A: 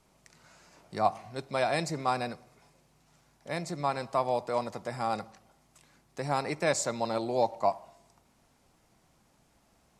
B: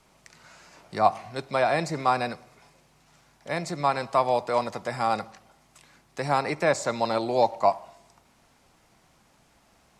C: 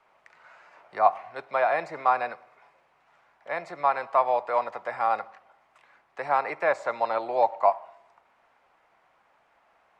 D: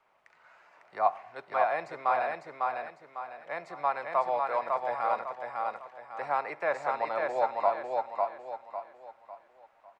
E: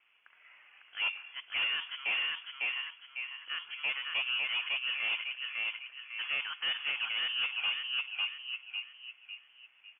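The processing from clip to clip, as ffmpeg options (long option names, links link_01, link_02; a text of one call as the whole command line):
ffmpeg -i in.wav -filter_complex "[0:a]equalizer=frequency=2100:width=0.36:gain=5,acrossover=split=580|1800[link_01][link_02][link_03];[link_03]alimiter=level_in=5dB:limit=-24dB:level=0:latency=1:release=89,volume=-5dB[link_04];[link_01][link_02][link_04]amix=inputs=3:normalize=0,volume=3dB" out.wav
ffmpeg -i in.wav -filter_complex "[0:a]acrossover=split=500 2500:gain=0.0891 1 0.0708[link_01][link_02][link_03];[link_01][link_02][link_03]amix=inputs=3:normalize=0,volume=2dB" out.wav
ffmpeg -i in.wav -af "aecho=1:1:551|1102|1653|2204|2755:0.708|0.262|0.0969|0.0359|0.0133,volume=-5.5dB" out.wav
ffmpeg -i in.wav -af "asoftclip=type=tanh:threshold=-28dB,lowpass=frequency=3000:width_type=q:width=0.5098,lowpass=frequency=3000:width_type=q:width=0.6013,lowpass=frequency=3000:width_type=q:width=0.9,lowpass=frequency=3000:width_type=q:width=2.563,afreqshift=-3500" out.wav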